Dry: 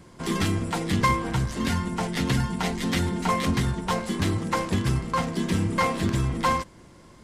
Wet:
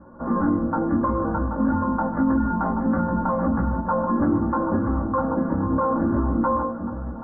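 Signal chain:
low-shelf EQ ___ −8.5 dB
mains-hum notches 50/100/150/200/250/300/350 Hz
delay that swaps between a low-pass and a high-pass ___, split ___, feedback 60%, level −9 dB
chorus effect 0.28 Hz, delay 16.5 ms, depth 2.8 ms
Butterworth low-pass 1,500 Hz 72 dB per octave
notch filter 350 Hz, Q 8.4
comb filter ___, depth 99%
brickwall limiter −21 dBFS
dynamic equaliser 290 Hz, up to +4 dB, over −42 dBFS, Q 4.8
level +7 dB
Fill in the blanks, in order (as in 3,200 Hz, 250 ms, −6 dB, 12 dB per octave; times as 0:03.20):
63 Hz, 780 ms, 1,500 Hz, 3.5 ms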